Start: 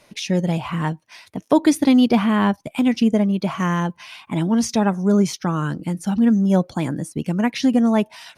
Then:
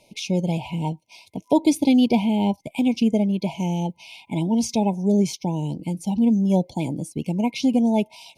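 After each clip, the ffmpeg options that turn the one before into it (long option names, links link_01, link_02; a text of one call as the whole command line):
ffmpeg -i in.wav -af "afftfilt=real='re*(1-between(b*sr/4096,1000,2100))':imag='im*(1-between(b*sr/4096,1000,2100))':win_size=4096:overlap=0.75,volume=-2.5dB" out.wav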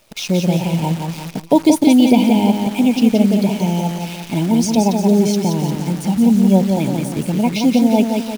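ffmpeg -i in.wav -filter_complex "[0:a]asplit=2[link_01][link_02];[link_02]aecho=0:1:175|350|525|700|875|1050:0.562|0.27|0.13|0.0622|0.0299|0.0143[link_03];[link_01][link_03]amix=inputs=2:normalize=0,acrusher=bits=7:dc=4:mix=0:aa=0.000001,volume=5.5dB" out.wav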